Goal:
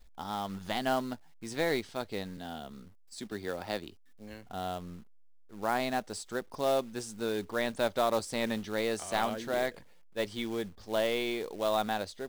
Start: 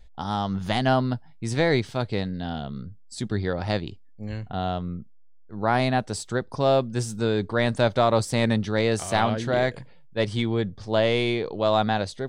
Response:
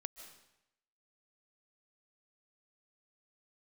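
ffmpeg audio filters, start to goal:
-filter_complex "[0:a]equalizer=f=120:t=o:w=0.82:g=-15,asettb=1/sr,asplit=3[a][b][c];[a]atrim=end=2.374[d];[b]atrim=start=2.37:end=4.45,asetpts=PTS-STARTPTS,afade=t=in:d=0.004:c=qsin,afade=t=out:st=2.076:d=0.004:c=qsin,acrossover=split=180[e][f];[e]acompressor=threshold=-47dB:ratio=2[g];[g][f]amix=inputs=2:normalize=0[h];[c]atrim=start=4.446[i];[d][h]acrossfade=d=0.004:c1=hsin:c2=qsin[j];[j][i]acrossfade=d=0.004:c1=qsin:c2=hsin,acrusher=bits=4:mode=log:mix=0:aa=0.000001,volume=-7.5dB"

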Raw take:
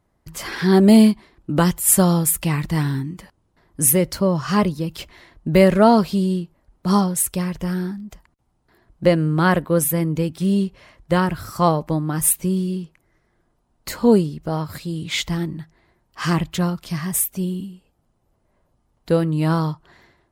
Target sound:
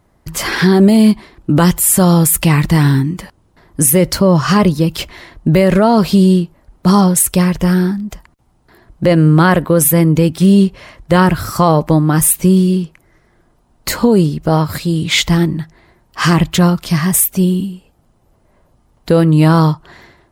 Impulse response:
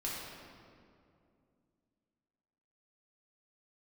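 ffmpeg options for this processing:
-af "alimiter=level_in=12.5dB:limit=-1dB:release=50:level=0:latency=1,volume=-1dB"

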